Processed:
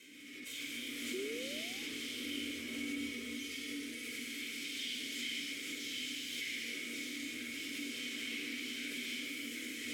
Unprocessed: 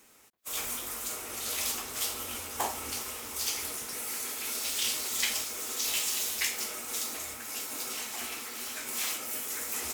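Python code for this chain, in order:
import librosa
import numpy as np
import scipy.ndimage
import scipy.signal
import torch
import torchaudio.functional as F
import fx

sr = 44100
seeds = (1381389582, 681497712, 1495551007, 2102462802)

y = fx.hpss_only(x, sr, part='harmonic', at=(2.6, 4.02), fade=0.02)
y = fx.tube_stage(y, sr, drive_db=43.0, bias=0.65)
y = fx.high_shelf(y, sr, hz=4600.0, db=11.5)
y = fx.room_shoebox(y, sr, seeds[0], volume_m3=3600.0, walls='mixed', distance_m=5.2)
y = fx.spec_paint(y, sr, seeds[1], shape='rise', start_s=1.13, length_s=0.78, low_hz=360.0, high_hz=930.0, level_db=-38.0)
y = fx.dynamic_eq(y, sr, hz=470.0, q=1.5, threshold_db=-51.0, ratio=4.0, max_db=5)
y = fx.vowel_filter(y, sr, vowel='i')
y = fx.pre_swell(y, sr, db_per_s=26.0)
y = y * librosa.db_to_amplitude(10.0)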